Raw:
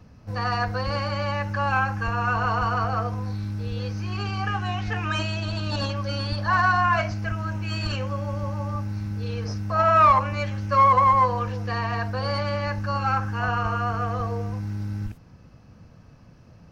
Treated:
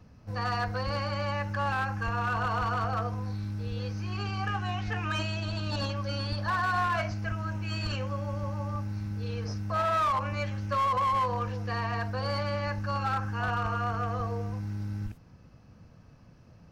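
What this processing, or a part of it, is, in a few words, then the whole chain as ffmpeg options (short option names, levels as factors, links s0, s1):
limiter into clipper: -af "alimiter=limit=0.2:level=0:latency=1:release=74,asoftclip=type=hard:threshold=0.119,volume=0.596"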